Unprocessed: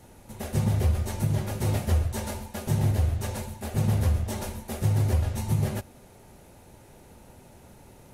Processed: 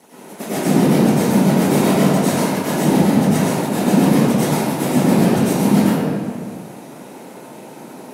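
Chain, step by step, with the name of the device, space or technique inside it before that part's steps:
whispering ghost (random phases in short frames; high-pass filter 200 Hz 24 dB per octave; convolution reverb RT60 1.9 s, pre-delay 88 ms, DRR −11 dB)
level +5 dB

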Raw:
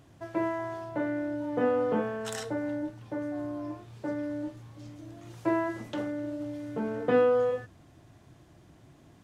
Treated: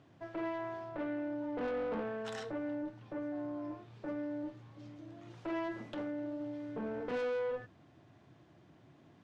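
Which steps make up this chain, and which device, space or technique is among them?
valve radio (band-pass filter 120–4,100 Hz; tube saturation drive 29 dB, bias 0.3; saturating transformer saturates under 190 Hz)
level −3 dB

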